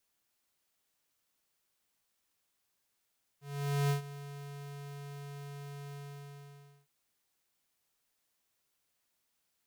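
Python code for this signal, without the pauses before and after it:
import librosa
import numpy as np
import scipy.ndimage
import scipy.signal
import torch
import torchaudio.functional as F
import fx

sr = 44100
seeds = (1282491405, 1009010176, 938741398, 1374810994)

y = fx.adsr_tone(sr, wave='square', hz=142.0, attack_ms=490.0, decay_ms=114.0, sustain_db=-16.5, held_s=2.54, release_ms=920.0, level_db=-28.5)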